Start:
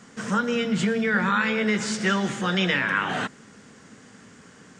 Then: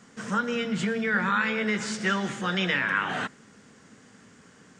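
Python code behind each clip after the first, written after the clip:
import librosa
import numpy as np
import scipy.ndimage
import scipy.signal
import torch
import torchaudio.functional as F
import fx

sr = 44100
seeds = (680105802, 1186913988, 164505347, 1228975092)

y = fx.dynamic_eq(x, sr, hz=1600.0, q=0.77, threshold_db=-34.0, ratio=4.0, max_db=3)
y = F.gain(torch.from_numpy(y), -4.5).numpy()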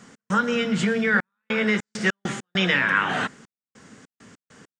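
y = fx.step_gate(x, sr, bpm=100, pattern='x.xxxxxx..xx.x.', floor_db=-60.0, edge_ms=4.5)
y = F.gain(torch.from_numpy(y), 5.0).numpy()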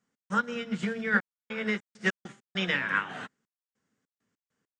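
y = fx.upward_expand(x, sr, threshold_db=-36.0, expansion=2.5)
y = F.gain(torch.from_numpy(y), -2.5).numpy()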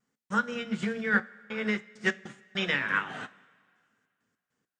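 y = fx.vibrato(x, sr, rate_hz=0.5, depth_cents=14.0)
y = fx.rev_double_slope(y, sr, seeds[0], early_s=0.24, late_s=2.1, knee_db=-18, drr_db=12.5)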